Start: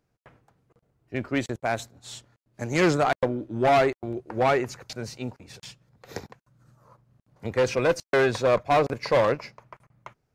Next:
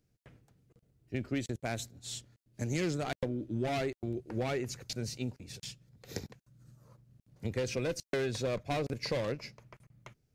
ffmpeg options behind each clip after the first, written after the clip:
-af "equalizer=f=1k:t=o:w=2:g=-14.5,acompressor=threshold=-32dB:ratio=4,volume=1.5dB"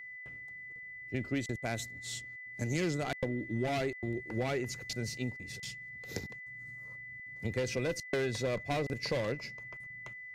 -af "aeval=exprs='val(0)+0.00631*sin(2*PI*2000*n/s)':c=same"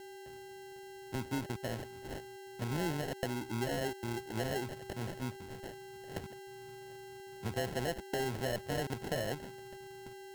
-filter_complex "[0:a]acrossover=split=280|1600|4200[a][b][c][d];[c]alimiter=level_in=14dB:limit=-24dB:level=0:latency=1,volume=-14dB[e];[a][b][e][d]amix=inputs=4:normalize=0,acrusher=samples=37:mix=1:aa=0.000001,volume=-2.5dB"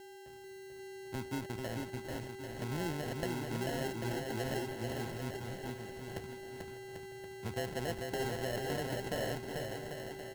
-af "aecho=1:1:440|792|1074|1299|1479:0.631|0.398|0.251|0.158|0.1,volume=-2.5dB"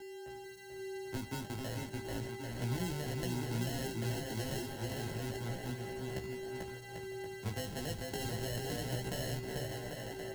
-filter_complex "[0:a]anlmdn=0.0000398,acrossover=split=230|3000[a][b][c];[b]acompressor=threshold=-44dB:ratio=5[d];[a][d][c]amix=inputs=3:normalize=0,flanger=delay=15.5:depth=4.3:speed=0.32,volume=6dB"

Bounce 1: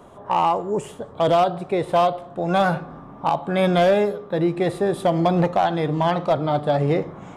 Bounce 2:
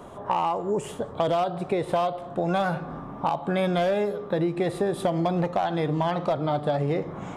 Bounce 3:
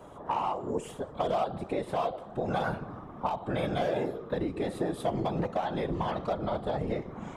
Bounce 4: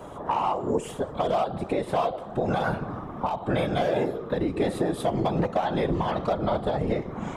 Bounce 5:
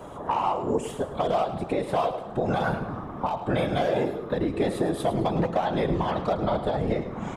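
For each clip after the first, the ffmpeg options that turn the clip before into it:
-af "acompressor=threshold=-26dB:ratio=4,volume=3dB"
-af "afftfilt=real='hypot(re,im)*cos(2*PI*random(0))':imag='hypot(re,im)*sin(2*PI*random(1))':win_size=512:overlap=0.75"
-af "alimiter=limit=-22.5dB:level=0:latency=1:release=353,volume=8dB"
-af "aecho=1:1:106|212|318:0.237|0.0783|0.0258"

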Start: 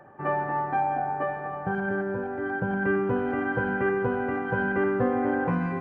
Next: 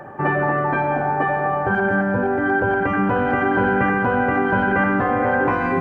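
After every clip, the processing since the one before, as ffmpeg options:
-filter_complex "[0:a]afftfilt=real='re*lt(hypot(re,im),0.282)':imag='im*lt(hypot(re,im),0.282)':win_size=1024:overlap=0.75,asplit=2[a][b];[b]alimiter=level_in=4.5dB:limit=-24dB:level=0:latency=1,volume=-4.5dB,volume=-2.5dB[c];[a][c]amix=inputs=2:normalize=0,volume=9dB"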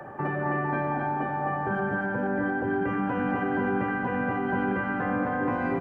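-filter_complex "[0:a]acrossover=split=130|300[a][b][c];[a]acompressor=threshold=-45dB:ratio=4[d];[b]acompressor=threshold=-26dB:ratio=4[e];[c]acompressor=threshold=-27dB:ratio=4[f];[d][e][f]amix=inputs=3:normalize=0,asplit=2[g][h];[h]aecho=0:1:262:0.708[i];[g][i]amix=inputs=2:normalize=0,volume=-4dB"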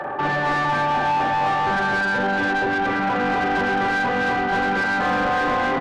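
-filter_complex "[0:a]asplit=2[a][b];[b]adelay=42,volume=-4dB[c];[a][c]amix=inputs=2:normalize=0,asplit=2[d][e];[e]highpass=f=720:p=1,volume=22dB,asoftclip=type=tanh:threshold=-13.5dB[f];[d][f]amix=inputs=2:normalize=0,lowpass=f=2.5k:p=1,volume=-6dB"

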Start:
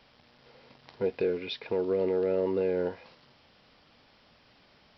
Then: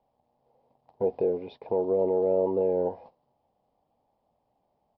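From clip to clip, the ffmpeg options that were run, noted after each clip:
-af "firequalizer=gain_entry='entry(340,0);entry(790,10);entry(1400,-18);entry(3100,-19);entry(5800,-24)':delay=0.05:min_phase=1,agate=range=-14dB:threshold=-47dB:ratio=16:detection=peak,highshelf=f=4.3k:g=6.5"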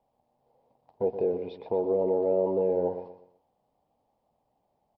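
-af "aecho=1:1:122|244|366|488:0.299|0.0985|0.0325|0.0107,volume=-1dB"

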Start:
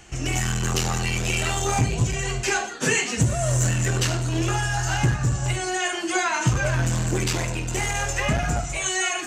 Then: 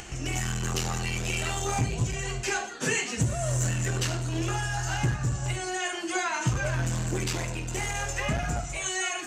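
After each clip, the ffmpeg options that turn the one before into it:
-af "acompressor=mode=upward:threshold=-27dB:ratio=2.5,volume=-5.5dB"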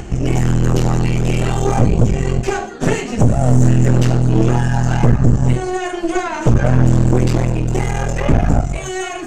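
-af "tiltshelf=f=890:g=9.5,aeval=exprs='0.473*(cos(1*acos(clip(val(0)/0.473,-1,1)))-cos(1*PI/2))+0.0944*(cos(5*acos(clip(val(0)/0.473,-1,1)))-cos(5*PI/2))+0.168*(cos(6*acos(clip(val(0)/0.473,-1,1)))-cos(6*PI/2))':c=same,volume=2dB"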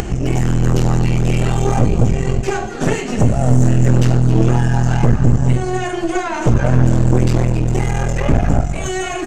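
-af "acompressor=mode=upward:threshold=-14dB:ratio=2.5,aecho=1:1:267|534|801:0.224|0.0649|0.0188,volume=-1dB"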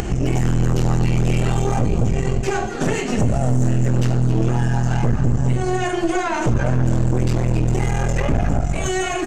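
-af "alimiter=level_in=7.5dB:limit=-1dB:release=50:level=0:latency=1,volume=-7.5dB"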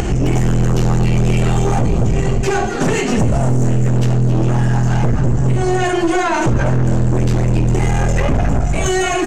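-af "asoftclip=type=tanh:threshold=-14dB,volume=7dB"

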